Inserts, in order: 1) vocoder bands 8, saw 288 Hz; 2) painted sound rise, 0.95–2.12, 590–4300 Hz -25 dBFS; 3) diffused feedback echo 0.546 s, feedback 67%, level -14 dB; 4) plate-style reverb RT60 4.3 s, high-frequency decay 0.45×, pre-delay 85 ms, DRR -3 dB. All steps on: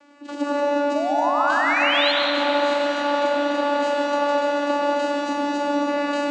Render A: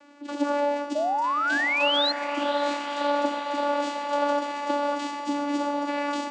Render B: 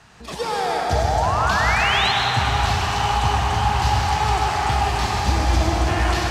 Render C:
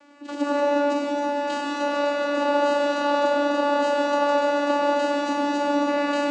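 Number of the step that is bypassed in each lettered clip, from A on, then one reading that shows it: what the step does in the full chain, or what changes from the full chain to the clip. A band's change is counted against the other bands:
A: 4, 500 Hz band -2.0 dB; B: 1, momentary loudness spread change -2 LU; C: 2, 4 kHz band -6.5 dB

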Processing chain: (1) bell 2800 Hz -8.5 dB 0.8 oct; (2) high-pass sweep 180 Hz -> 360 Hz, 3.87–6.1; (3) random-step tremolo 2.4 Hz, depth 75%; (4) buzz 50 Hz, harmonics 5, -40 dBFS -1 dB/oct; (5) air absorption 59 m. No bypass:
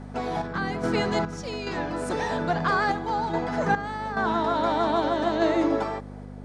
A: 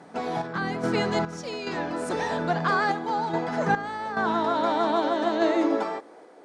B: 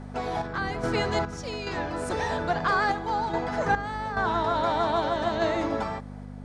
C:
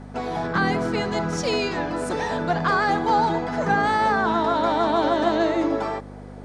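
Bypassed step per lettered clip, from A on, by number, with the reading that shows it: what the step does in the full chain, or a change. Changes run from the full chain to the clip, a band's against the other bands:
4, 125 Hz band -2.0 dB; 2, loudness change -1.5 LU; 3, loudness change +3.5 LU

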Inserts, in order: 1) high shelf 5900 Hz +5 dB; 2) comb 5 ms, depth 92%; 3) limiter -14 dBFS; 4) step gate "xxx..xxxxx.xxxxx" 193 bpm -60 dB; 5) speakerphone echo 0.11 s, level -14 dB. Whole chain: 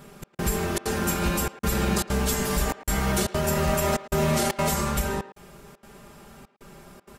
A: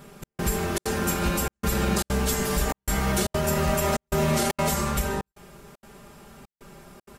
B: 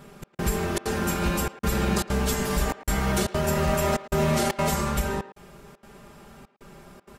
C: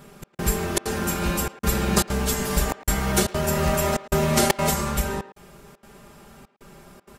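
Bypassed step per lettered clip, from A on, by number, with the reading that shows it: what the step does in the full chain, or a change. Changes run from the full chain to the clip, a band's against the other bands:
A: 5, echo-to-direct -15.5 dB to none; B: 1, 8 kHz band -3.0 dB; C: 3, crest factor change +8.5 dB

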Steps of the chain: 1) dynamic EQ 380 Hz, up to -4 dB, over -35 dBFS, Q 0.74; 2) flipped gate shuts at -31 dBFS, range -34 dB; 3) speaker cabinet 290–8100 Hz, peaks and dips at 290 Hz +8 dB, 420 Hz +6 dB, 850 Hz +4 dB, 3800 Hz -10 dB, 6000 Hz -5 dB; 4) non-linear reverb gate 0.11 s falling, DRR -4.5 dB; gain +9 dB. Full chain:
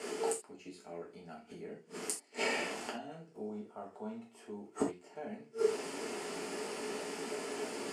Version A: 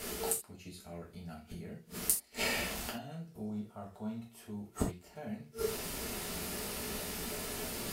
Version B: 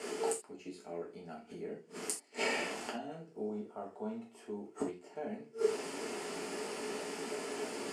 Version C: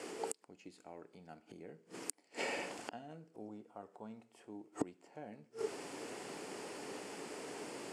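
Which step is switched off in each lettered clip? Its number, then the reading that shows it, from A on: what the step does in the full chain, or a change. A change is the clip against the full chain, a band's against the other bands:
3, crest factor change +9.0 dB; 1, momentary loudness spread change -3 LU; 4, momentary loudness spread change -2 LU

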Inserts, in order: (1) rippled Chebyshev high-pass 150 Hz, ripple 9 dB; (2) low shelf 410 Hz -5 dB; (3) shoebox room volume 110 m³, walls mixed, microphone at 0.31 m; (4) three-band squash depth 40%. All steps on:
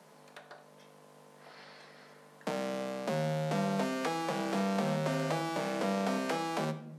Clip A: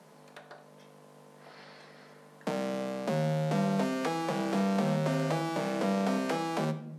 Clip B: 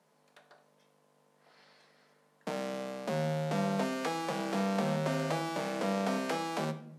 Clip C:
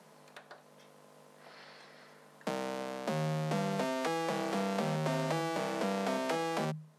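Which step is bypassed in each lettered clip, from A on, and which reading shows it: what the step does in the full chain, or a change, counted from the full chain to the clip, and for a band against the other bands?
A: 2, 125 Hz band +3.5 dB; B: 4, momentary loudness spread change -14 LU; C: 3, 250 Hz band -1.5 dB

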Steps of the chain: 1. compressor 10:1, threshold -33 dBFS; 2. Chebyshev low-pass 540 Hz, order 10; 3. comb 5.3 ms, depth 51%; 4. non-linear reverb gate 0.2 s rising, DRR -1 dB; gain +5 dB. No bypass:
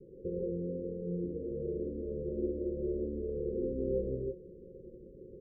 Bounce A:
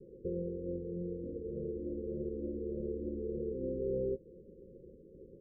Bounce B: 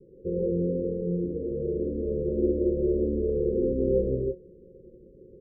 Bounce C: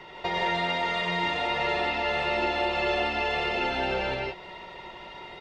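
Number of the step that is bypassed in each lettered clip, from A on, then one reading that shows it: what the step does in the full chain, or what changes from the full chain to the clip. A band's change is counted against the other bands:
4, momentary loudness spread change +2 LU; 1, mean gain reduction 6.5 dB; 2, momentary loudness spread change -1 LU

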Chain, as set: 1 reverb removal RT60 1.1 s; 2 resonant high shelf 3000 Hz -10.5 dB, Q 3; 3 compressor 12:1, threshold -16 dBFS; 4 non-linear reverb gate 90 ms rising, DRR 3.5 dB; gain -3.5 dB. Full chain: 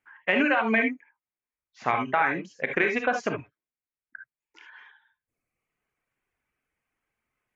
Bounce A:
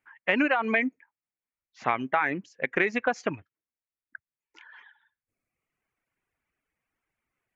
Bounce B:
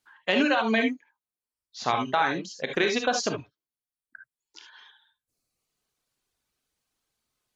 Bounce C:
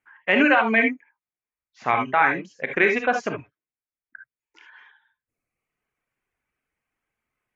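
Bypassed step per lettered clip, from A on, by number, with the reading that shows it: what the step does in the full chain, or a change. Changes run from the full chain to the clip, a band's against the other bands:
4, momentary loudness spread change -2 LU; 2, 4 kHz band +8.5 dB; 3, mean gain reduction 2.5 dB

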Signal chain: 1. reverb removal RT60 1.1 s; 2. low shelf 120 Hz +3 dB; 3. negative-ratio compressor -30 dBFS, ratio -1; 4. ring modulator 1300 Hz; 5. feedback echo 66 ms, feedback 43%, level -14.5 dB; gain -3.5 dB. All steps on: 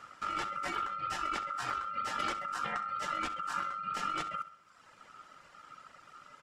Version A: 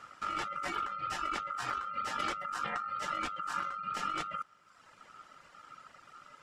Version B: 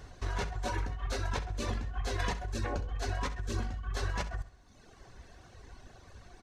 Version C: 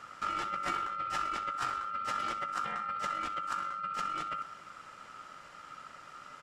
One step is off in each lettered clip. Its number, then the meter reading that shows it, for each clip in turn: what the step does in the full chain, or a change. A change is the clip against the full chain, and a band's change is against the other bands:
5, echo-to-direct -13.5 dB to none; 4, crest factor change -1.5 dB; 1, 1 kHz band +2.0 dB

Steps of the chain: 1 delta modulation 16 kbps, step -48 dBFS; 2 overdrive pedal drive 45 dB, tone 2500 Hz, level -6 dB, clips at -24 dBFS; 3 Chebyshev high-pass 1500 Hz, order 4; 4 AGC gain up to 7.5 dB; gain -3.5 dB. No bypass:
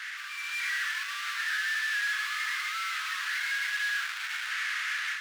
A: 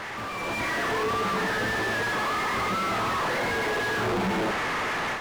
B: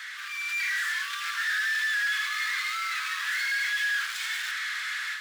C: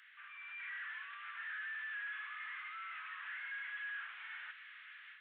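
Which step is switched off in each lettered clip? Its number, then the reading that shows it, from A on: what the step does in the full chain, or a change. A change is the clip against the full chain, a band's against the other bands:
3, 1 kHz band +12.0 dB; 1, loudness change +2.5 LU; 2, momentary loudness spread change +5 LU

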